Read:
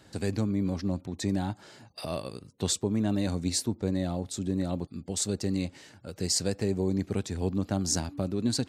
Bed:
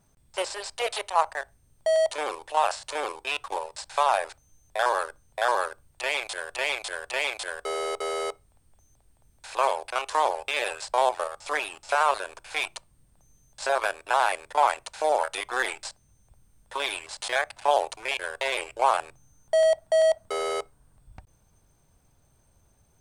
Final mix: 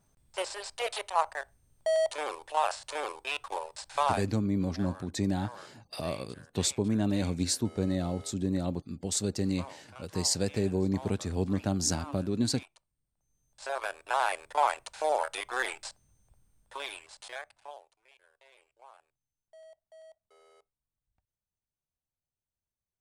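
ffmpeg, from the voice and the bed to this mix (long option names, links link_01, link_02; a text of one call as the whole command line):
ffmpeg -i stem1.wav -i stem2.wav -filter_complex "[0:a]adelay=3950,volume=-0.5dB[link_01];[1:a]volume=13.5dB,afade=type=out:start_time=4.08:duration=0.2:silence=0.125893,afade=type=in:start_time=13.16:duration=1.15:silence=0.125893,afade=type=out:start_time=15.98:duration=1.86:silence=0.0375837[link_02];[link_01][link_02]amix=inputs=2:normalize=0" out.wav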